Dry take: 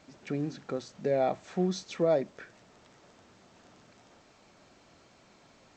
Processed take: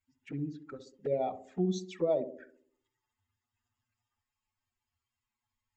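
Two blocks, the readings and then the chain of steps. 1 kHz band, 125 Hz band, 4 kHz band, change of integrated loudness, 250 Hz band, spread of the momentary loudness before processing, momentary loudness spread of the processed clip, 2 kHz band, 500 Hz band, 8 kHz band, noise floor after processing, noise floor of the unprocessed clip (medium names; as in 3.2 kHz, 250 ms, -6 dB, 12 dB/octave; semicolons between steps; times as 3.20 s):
-5.0 dB, -2.5 dB, -6.5 dB, -3.0 dB, -2.5 dB, 11 LU, 15 LU, -9.5 dB, -3.5 dB, -5.0 dB, under -85 dBFS, -61 dBFS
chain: expander on every frequency bin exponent 2; touch-sensitive flanger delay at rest 8.3 ms, full sweep at -30 dBFS; band-passed feedback delay 65 ms, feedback 58%, band-pass 330 Hz, level -8 dB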